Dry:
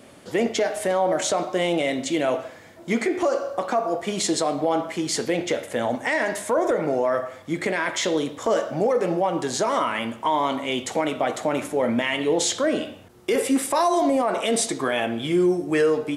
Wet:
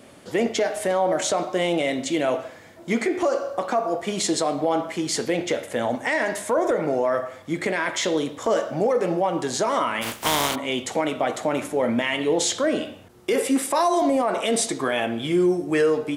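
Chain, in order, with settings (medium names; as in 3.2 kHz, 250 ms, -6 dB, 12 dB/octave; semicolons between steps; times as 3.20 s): 10.01–10.54 s: spectral contrast reduction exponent 0.37; 13.33–14.02 s: high-pass 130 Hz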